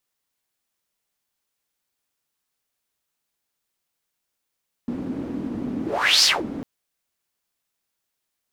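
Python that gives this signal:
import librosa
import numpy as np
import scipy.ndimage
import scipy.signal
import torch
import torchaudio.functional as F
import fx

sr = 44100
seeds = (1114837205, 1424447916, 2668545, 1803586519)

y = fx.whoosh(sr, seeds[0], length_s=1.75, peak_s=1.36, rise_s=0.45, fall_s=0.21, ends_hz=260.0, peak_hz=5100.0, q=5.1, swell_db=13.0)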